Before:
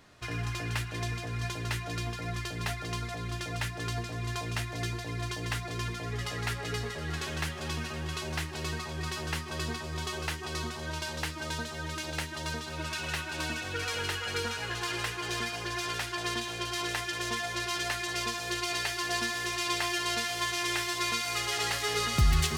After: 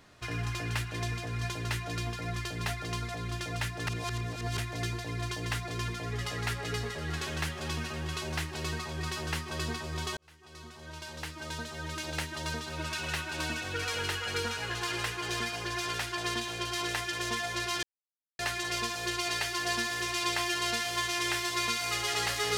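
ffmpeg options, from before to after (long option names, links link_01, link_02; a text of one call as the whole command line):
ffmpeg -i in.wav -filter_complex "[0:a]asplit=5[link_01][link_02][link_03][link_04][link_05];[link_01]atrim=end=3.872[link_06];[link_02]atrim=start=3.868:end=4.582,asetpts=PTS-STARTPTS,areverse[link_07];[link_03]atrim=start=4.578:end=10.17,asetpts=PTS-STARTPTS,afade=type=out:start_time=5.588:duration=0.004:curve=hsin[link_08];[link_04]atrim=start=10.17:end=17.83,asetpts=PTS-STARTPTS,afade=type=in:duration=2,afade=type=out:start_time=7.656:duration=0.004:curve=hsin,apad=pad_dur=0.56[link_09];[link_05]atrim=start=17.83,asetpts=PTS-STARTPTS,afade=type=in:duration=0.004:curve=hsin[link_10];[link_06][link_07]acrossfade=duration=0.004:curve1=hsin:curve2=hsin[link_11];[link_08][link_09][link_10]concat=n=3:v=0:a=1[link_12];[link_11][link_12]acrossfade=duration=0.004:curve1=hsin:curve2=hsin" out.wav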